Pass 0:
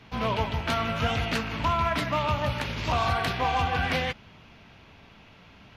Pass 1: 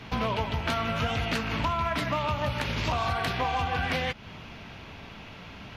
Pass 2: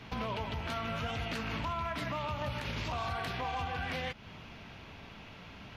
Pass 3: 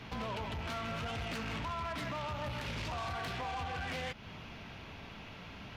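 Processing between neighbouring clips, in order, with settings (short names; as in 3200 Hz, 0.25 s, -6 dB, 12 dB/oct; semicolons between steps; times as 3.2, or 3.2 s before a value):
compressor 4:1, threshold -35 dBFS, peak gain reduction 11.5 dB; gain +8 dB
limiter -22 dBFS, peak gain reduction 6 dB; gain -5.5 dB
soft clip -36 dBFS, distortion -12 dB; gain +1.5 dB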